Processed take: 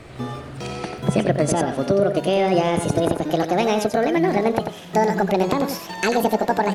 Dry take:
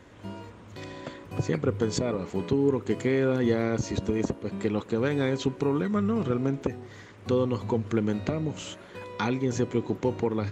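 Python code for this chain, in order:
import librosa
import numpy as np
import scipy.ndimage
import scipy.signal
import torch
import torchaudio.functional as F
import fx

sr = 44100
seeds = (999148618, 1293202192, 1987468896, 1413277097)

p1 = fx.speed_glide(x, sr, from_pct=123, to_pct=189)
p2 = fx.low_shelf(p1, sr, hz=87.0, db=8.5)
p3 = fx.rider(p2, sr, range_db=5, speed_s=0.5)
p4 = p2 + (p3 * 10.0 ** (0.5 / 20.0))
y = p4 + 10.0 ** (-7.5 / 20.0) * np.pad(p4, (int(90 * sr / 1000.0), 0))[:len(p4)]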